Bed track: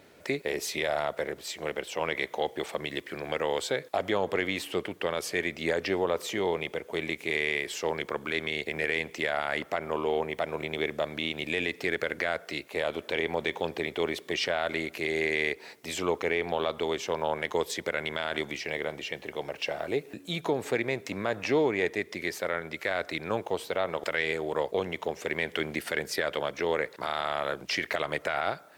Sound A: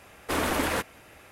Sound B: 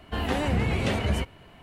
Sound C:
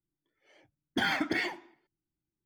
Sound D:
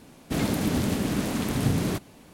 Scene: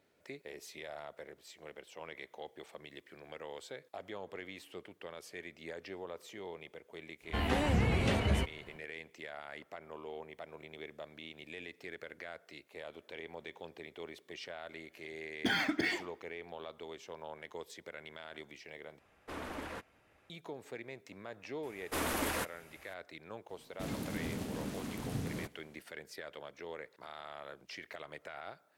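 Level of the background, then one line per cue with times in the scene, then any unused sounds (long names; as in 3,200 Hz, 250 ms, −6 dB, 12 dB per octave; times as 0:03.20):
bed track −17 dB
0:07.21: mix in B −4.5 dB, fades 0.10 s
0:14.48: mix in C −1.5 dB + parametric band 920 Hz −5.5 dB 1.1 octaves
0:18.99: overwrite with A −15.5 dB + low-pass filter 3,400 Hz 6 dB per octave
0:21.63: mix in A −8.5 dB + high-shelf EQ 6,400 Hz +6 dB
0:23.49: mix in D −14 dB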